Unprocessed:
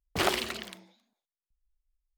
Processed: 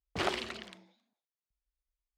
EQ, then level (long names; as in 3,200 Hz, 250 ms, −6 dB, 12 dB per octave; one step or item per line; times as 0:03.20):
high-pass filter 41 Hz
high-frequency loss of the air 91 metres
high-shelf EQ 11,000 Hz +8 dB
−4.5 dB